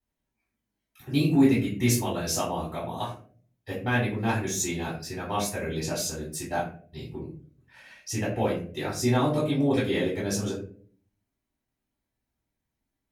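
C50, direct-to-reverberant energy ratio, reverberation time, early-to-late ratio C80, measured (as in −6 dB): 5.5 dB, −9.5 dB, 0.50 s, 10.5 dB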